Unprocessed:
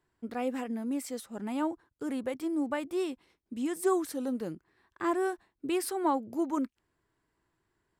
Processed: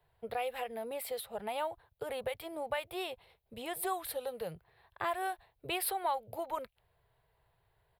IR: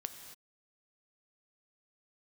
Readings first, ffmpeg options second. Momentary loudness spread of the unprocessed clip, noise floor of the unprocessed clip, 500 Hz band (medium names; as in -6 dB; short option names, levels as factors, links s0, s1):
10 LU, -80 dBFS, -4.5 dB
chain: -filter_complex "[0:a]firequalizer=gain_entry='entry(130,0);entry(270,-30);entry(450,-1);entry(720,3);entry(1100,-7);entry(1500,-8);entry(2400,-4);entry(3900,-2);entry(6200,-24);entry(11000,-1)':delay=0.05:min_phase=1,acrossover=split=110|1300|3600[s0][s1][s2][s3];[s1]acompressor=threshold=0.00631:ratio=6[s4];[s0][s4][s2][s3]amix=inputs=4:normalize=0,volume=2.51"